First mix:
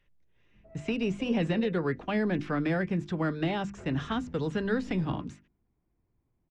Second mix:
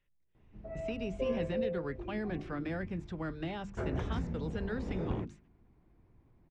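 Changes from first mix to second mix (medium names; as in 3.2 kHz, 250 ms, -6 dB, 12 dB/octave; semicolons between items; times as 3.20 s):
speech -9.0 dB; background +11.5 dB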